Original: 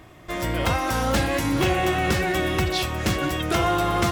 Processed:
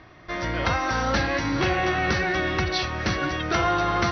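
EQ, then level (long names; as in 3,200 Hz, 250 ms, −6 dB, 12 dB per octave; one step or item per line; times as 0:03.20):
Chebyshev low-pass with heavy ripple 6,000 Hz, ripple 6 dB
+3.0 dB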